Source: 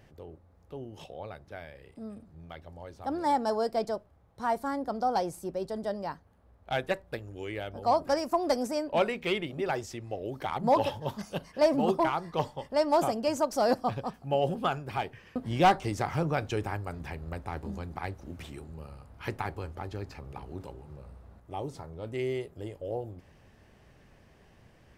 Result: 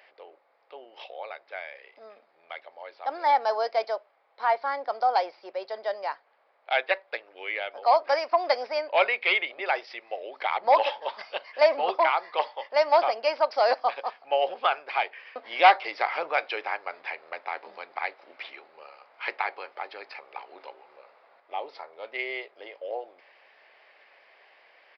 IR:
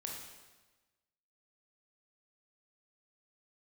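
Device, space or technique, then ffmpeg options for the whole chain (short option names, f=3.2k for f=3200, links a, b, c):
musical greeting card: -af "aresample=11025,aresample=44100,highpass=f=560:w=0.5412,highpass=f=560:w=1.3066,equalizer=f=2.2k:t=o:w=0.4:g=8.5,volume=5.5dB"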